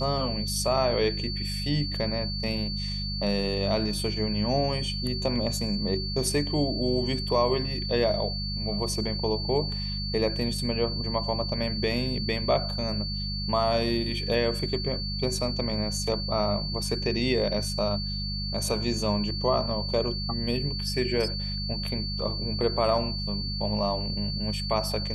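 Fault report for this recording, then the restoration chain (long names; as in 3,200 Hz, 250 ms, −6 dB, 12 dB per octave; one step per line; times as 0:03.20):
mains hum 50 Hz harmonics 4 −33 dBFS
whistle 4,500 Hz −33 dBFS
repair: hum removal 50 Hz, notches 4
notch filter 4,500 Hz, Q 30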